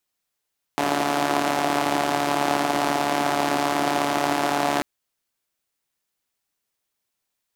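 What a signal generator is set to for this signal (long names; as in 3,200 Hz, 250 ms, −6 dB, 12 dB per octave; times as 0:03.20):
pulse-train model of a four-cylinder engine, steady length 4.04 s, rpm 4,300, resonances 330/680 Hz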